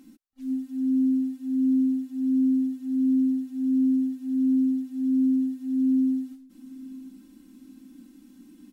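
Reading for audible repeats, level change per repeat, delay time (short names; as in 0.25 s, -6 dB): 2, -6.5 dB, 0.9 s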